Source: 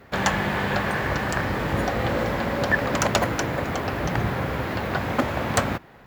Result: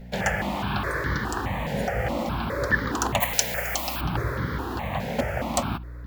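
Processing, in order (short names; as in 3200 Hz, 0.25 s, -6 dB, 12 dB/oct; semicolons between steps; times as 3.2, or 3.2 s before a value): 3.2–4.01 tilt +4.5 dB/oct; hum 60 Hz, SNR 11 dB; step phaser 4.8 Hz 320–2600 Hz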